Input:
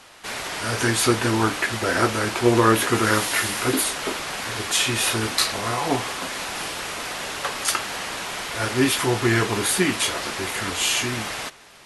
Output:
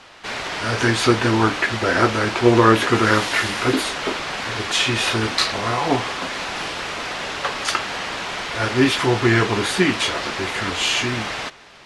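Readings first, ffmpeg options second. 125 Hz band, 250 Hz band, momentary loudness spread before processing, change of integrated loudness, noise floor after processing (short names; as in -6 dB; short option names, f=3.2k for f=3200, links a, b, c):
+3.5 dB, +3.5 dB, 9 LU, +2.5 dB, -36 dBFS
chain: -af "lowpass=5.1k,volume=3.5dB"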